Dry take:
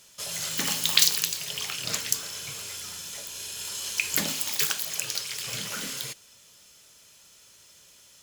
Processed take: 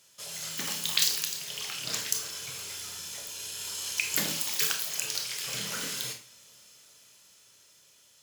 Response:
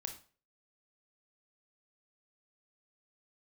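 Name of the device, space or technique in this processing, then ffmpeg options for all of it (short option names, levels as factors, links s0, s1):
far laptop microphone: -filter_complex "[1:a]atrim=start_sample=2205[s0];[0:a][s0]afir=irnorm=-1:irlink=0,highpass=f=120:p=1,dynaudnorm=f=210:g=17:m=3.76,volume=0.668"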